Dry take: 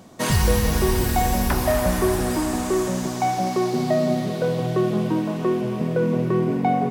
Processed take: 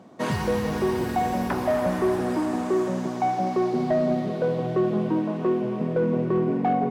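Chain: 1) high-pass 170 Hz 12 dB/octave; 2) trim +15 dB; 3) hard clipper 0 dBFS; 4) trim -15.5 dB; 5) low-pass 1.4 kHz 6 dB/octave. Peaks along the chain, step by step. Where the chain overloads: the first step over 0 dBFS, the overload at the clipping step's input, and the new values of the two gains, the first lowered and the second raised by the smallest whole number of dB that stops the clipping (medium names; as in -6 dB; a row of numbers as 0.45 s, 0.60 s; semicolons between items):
-9.5 dBFS, +5.5 dBFS, 0.0 dBFS, -15.5 dBFS, -15.5 dBFS; step 2, 5.5 dB; step 2 +9 dB, step 4 -9.5 dB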